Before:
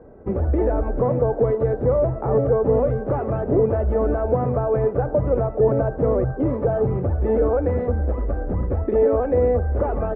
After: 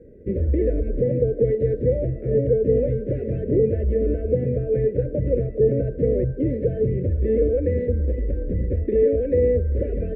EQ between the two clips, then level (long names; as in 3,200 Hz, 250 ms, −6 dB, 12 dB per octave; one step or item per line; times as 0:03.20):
elliptic band-stop filter 520–1,900 Hz, stop band 50 dB
0.0 dB